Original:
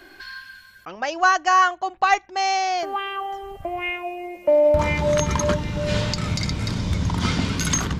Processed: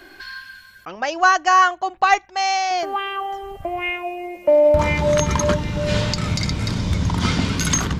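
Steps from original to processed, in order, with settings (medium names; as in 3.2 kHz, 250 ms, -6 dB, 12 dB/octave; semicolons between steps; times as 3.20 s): 2.25–2.71 s: peaking EQ 300 Hz -13.5 dB 0.85 oct; trim +2.5 dB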